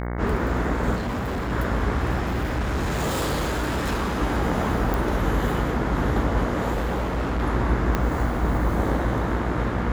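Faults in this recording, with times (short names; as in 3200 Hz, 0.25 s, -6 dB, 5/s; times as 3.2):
buzz 60 Hz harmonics 37 -28 dBFS
0.95–1.53 clipped -24 dBFS
2.22–4.22 clipped -21 dBFS
4.94 pop
6.73–7.43 clipped -21.5 dBFS
7.95 pop -9 dBFS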